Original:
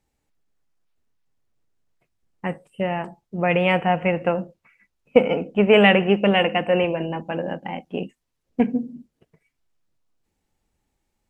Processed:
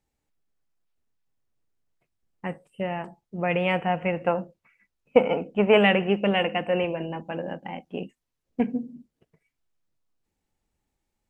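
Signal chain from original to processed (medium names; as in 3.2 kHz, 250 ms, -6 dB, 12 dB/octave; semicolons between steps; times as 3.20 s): 4.20–5.78 s: dynamic bell 940 Hz, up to +7 dB, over -31 dBFS, Q 1.1; trim -5 dB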